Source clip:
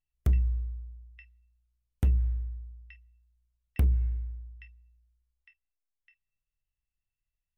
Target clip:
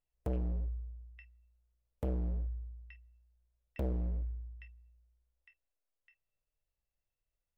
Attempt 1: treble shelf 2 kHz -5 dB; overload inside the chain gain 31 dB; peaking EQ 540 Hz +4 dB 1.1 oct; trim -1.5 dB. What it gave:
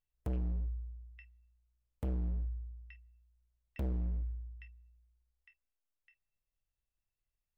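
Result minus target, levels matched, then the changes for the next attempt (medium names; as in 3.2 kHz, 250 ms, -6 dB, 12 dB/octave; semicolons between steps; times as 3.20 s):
500 Hz band -5.5 dB
change: peaking EQ 540 Hz +11.5 dB 1.1 oct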